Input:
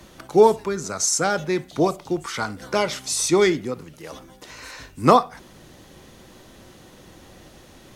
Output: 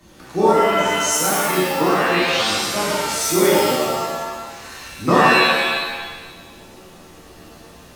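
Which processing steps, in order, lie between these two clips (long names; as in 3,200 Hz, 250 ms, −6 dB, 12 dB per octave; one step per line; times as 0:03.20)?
sound drawn into the spectrogram rise, 0:01.70–0:02.50, 780–4,100 Hz −26 dBFS
reverb with rising layers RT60 1.3 s, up +7 semitones, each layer −2 dB, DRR −8 dB
level −8 dB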